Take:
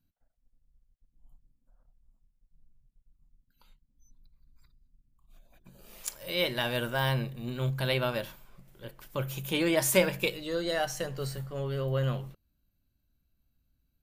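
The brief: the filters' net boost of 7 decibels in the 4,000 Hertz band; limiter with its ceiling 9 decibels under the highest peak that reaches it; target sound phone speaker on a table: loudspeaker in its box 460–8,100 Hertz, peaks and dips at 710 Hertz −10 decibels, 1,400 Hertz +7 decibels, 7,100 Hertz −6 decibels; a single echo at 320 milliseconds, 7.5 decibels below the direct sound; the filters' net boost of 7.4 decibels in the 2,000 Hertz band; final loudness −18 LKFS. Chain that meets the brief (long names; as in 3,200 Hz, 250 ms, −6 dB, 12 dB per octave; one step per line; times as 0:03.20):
parametric band 2,000 Hz +5.5 dB
parametric band 4,000 Hz +7 dB
brickwall limiter −16 dBFS
loudspeaker in its box 460–8,100 Hz, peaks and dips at 710 Hz −10 dB, 1,400 Hz +7 dB, 7,100 Hz −6 dB
single-tap delay 320 ms −7.5 dB
level +12 dB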